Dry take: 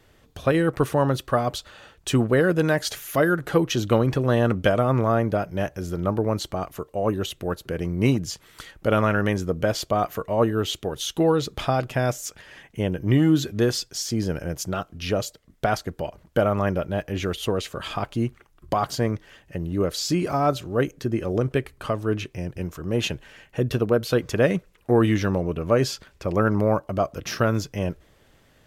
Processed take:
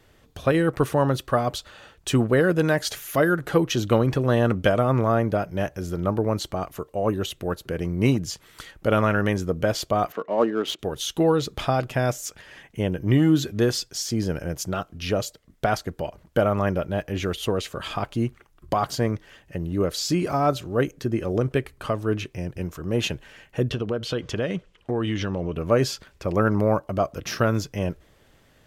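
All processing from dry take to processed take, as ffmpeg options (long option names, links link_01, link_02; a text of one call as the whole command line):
ffmpeg -i in.wav -filter_complex "[0:a]asettb=1/sr,asplit=3[link_01][link_02][link_03];[link_01]atrim=end=10.124[link_04];[link_02]atrim=start=10.12:end=10.79,asetpts=PTS-STARTPTS,afade=type=in:duration=0.004:curve=qsin,afade=type=out:start_time=0.666:duration=0.004:curve=qsin,highpass=frequency=210:width=0.5412,highpass=frequency=210:width=1.3066,adynamicsmooth=sensitivity=4.5:basefreq=2500[link_05];[link_03]atrim=start=10.786[link_06];[link_04][link_05]acrossfade=duration=0.004:curve1=hsin:curve2=qsin[link_07];[link_07][link_06]acrossfade=duration=0.004:curve1=qsin:curve2=hsin,asettb=1/sr,asplit=3[link_08][link_09][link_10];[link_08]atrim=end=23.704[link_11];[link_09]atrim=start=23.7:end=25.56,asetpts=PTS-STARTPTS,afade=type=in:duration=0.004:curve=qsin,afade=type=out:start_time=1.856:duration=0.004:curve=qsin,equalizer=frequency=3100:width=6.3:gain=10,acompressor=threshold=-23dB:ratio=3:attack=3.2:release=140:knee=1:detection=peak,lowpass=6900[link_12];[link_10]atrim=start=25.556[link_13];[link_11][link_12]acrossfade=duration=0.004:curve1=hsin:curve2=qsin[link_14];[link_14][link_13]acrossfade=duration=0.004:curve1=qsin:curve2=hsin" out.wav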